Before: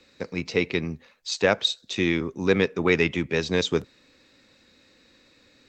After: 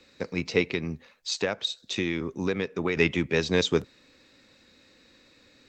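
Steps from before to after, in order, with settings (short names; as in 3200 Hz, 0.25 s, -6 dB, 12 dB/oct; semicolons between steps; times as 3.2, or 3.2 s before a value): 0.61–2.97 compressor 6:1, threshold -24 dBFS, peak gain reduction 10 dB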